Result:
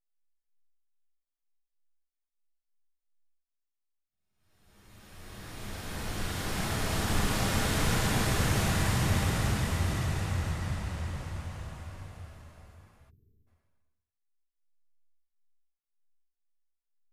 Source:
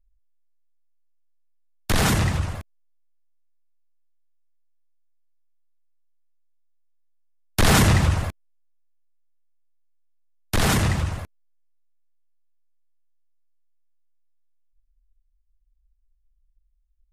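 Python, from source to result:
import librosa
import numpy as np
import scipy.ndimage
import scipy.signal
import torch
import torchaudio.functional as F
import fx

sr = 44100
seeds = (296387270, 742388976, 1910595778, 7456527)

y = fx.paulstretch(x, sr, seeds[0], factor=5.7, window_s=1.0, from_s=9.28)
y = fx.spec_erase(y, sr, start_s=13.1, length_s=0.37, low_hz=470.0, high_hz=12000.0)
y = y * 10.0 ** (-6.5 / 20.0)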